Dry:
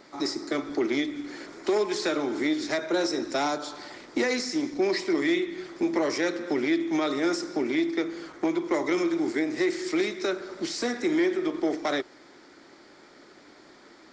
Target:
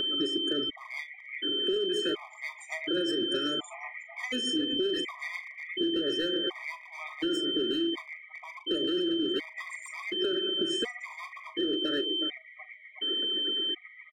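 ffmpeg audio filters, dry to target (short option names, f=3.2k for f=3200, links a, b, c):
-filter_complex "[0:a]firequalizer=gain_entry='entry(130,0);entry(200,-5);entry(410,4);entry(630,-11);entry(2200,4);entry(4100,-18);entry(8900,11)':delay=0.05:min_phase=1,acompressor=mode=upward:threshold=-34dB:ratio=2.5,aecho=1:1:369|738|1107|1476|1845|2214:0.266|0.138|0.0719|0.0374|0.0195|0.0101,afftfilt=real='re*gte(hypot(re,im),0.01)':imag='im*gte(hypot(re,im),0.01)':win_size=1024:overlap=0.75,tremolo=f=8:d=0.56,asplit=2[a][b];[b]alimiter=level_in=1.5dB:limit=-24dB:level=0:latency=1:release=16,volume=-1.5dB,volume=1dB[c];[a][c]amix=inputs=2:normalize=0,volume=20.5dB,asoftclip=hard,volume=-20.5dB,asplit=2[d][e];[e]adelay=39,volume=-13dB[f];[d][f]amix=inputs=2:normalize=0,aeval=exprs='val(0)+0.0447*sin(2*PI*3100*n/s)':c=same,acompressor=threshold=-25dB:ratio=16,afftfilt=real='re*gt(sin(2*PI*0.69*pts/sr)*(1-2*mod(floor(b*sr/1024/630),2)),0)':imag='im*gt(sin(2*PI*0.69*pts/sr)*(1-2*mod(floor(b*sr/1024/630),2)),0)':win_size=1024:overlap=0.75"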